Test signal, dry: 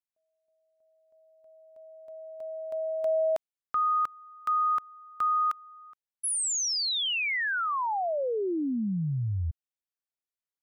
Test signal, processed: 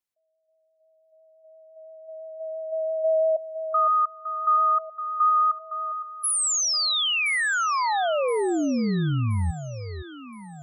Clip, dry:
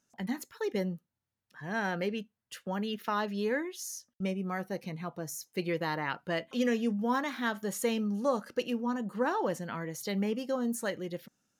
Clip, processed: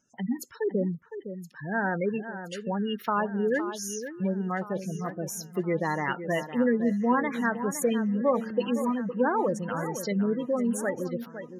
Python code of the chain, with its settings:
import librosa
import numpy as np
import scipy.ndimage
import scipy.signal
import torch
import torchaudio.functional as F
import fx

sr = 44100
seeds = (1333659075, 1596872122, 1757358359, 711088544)

y = fx.spec_gate(x, sr, threshold_db=-15, keep='strong')
y = fx.vibrato(y, sr, rate_hz=5.9, depth_cents=11.0)
y = fx.echo_alternate(y, sr, ms=511, hz=2100.0, feedback_pct=66, wet_db=-10.5)
y = F.gain(torch.from_numpy(y), 5.0).numpy()